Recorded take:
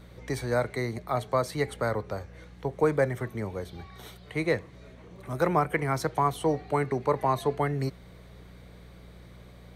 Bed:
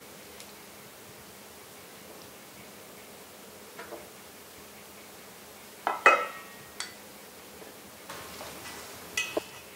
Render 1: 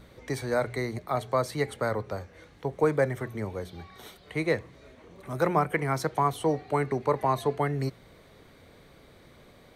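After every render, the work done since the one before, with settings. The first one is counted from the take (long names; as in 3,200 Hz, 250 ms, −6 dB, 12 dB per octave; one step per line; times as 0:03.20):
hum removal 60 Hz, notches 3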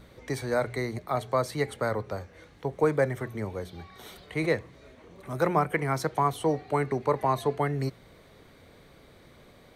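0:03.93–0:04.53: level that may fall only so fast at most 39 dB per second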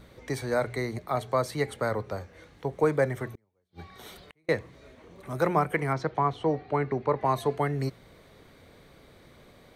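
0:03.26–0:04.49: gate with flip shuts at −31 dBFS, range −40 dB
0:05.93–0:07.25: high-frequency loss of the air 170 metres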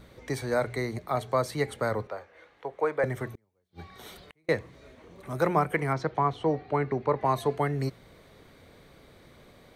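0:02.07–0:03.04: three-way crossover with the lows and the highs turned down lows −18 dB, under 410 Hz, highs −13 dB, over 3,400 Hz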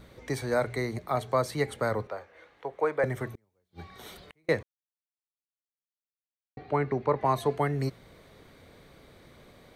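0:04.63–0:06.57: silence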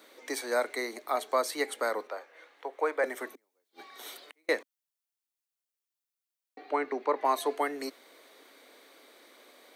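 elliptic high-pass filter 270 Hz, stop band 80 dB
spectral tilt +2 dB per octave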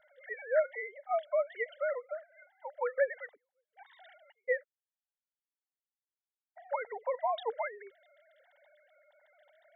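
three sine waves on the formant tracks
phaser with its sweep stopped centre 1,700 Hz, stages 8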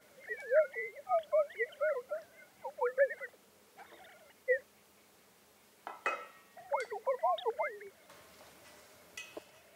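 mix in bed −16 dB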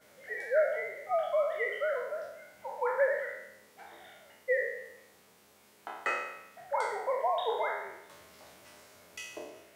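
peak hold with a decay on every bin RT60 0.87 s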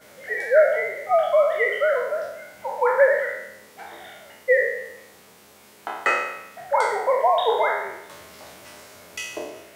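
level +11 dB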